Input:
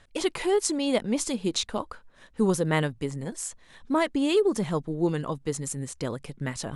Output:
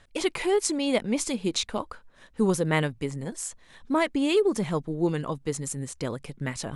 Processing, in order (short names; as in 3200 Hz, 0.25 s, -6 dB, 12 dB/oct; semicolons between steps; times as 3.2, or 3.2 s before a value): dynamic EQ 2300 Hz, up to +5 dB, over -52 dBFS, Q 4.7